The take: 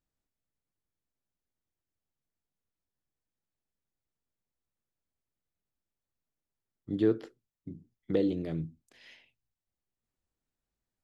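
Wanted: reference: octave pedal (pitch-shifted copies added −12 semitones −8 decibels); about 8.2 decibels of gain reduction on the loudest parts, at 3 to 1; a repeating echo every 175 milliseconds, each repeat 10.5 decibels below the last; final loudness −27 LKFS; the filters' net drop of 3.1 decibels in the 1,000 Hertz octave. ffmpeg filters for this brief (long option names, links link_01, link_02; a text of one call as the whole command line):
ffmpeg -i in.wav -filter_complex "[0:a]equalizer=frequency=1000:width_type=o:gain=-5,acompressor=threshold=-32dB:ratio=3,aecho=1:1:175|350|525:0.299|0.0896|0.0269,asplit=2[link_01][link_02];[link_02]asetrate=22050,aresample=44100,atempo=2,volume=-8dB[link_03];[link_01][link_03]amix=inputs=2:normalize=0,volume=11dB" out.wav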